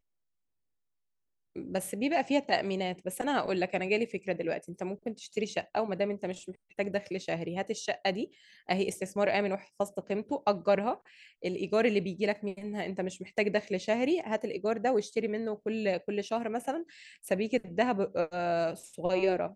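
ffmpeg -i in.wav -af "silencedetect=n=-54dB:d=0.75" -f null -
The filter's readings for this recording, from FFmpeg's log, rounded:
silence_start: 0.00
silence_end: 1.56 | silence_duration: 1.56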